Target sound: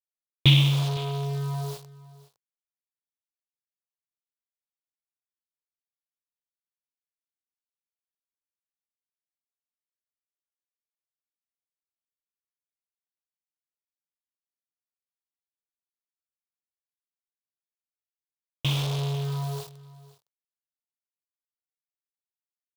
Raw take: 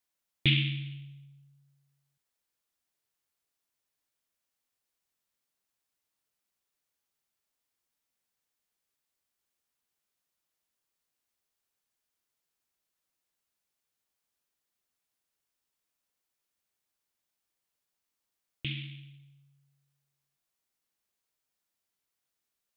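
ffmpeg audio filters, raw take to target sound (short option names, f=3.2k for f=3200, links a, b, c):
-af "aeval=exprs='val(0)+0.5*0.015*sgn(val(0))':c=same,acrusher=bits=6:mix=0:aa=0.000001,equalizer=f=125:t=o:w=1:g=10,equalizer=f=250:t=o:w=1:g=-6,equalizer=f=500:t=o:w=1:g=10,equalizer=f=1k:t=o:w=1:g=10,equalizer=f=2k:t=o:w=1:g=-7,equalizer=f=4k:t=o:w=1:g=9,aecho=1:1:511:0.1,volume=1dB"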